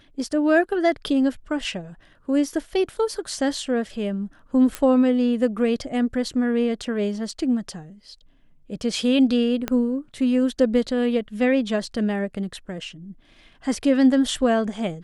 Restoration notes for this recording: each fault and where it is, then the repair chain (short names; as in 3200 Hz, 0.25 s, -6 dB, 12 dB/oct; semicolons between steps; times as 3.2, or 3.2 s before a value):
4.75 pop -11 dBFS
9.68 pop -10 dBFS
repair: de-click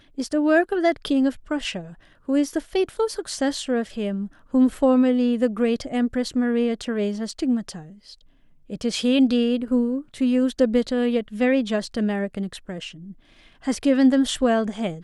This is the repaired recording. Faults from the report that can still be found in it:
4.75 pop
9.68 pop